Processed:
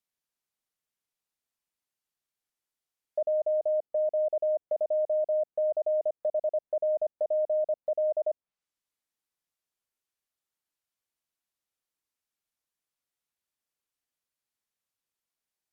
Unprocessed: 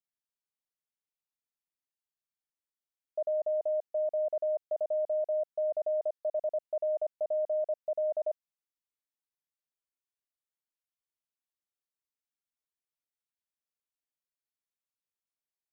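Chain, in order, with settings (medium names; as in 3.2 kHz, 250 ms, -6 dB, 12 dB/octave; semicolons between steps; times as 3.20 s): low-pass that closes with the level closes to 740 Hz, closed at -32.5 dBFS; trim +5 dB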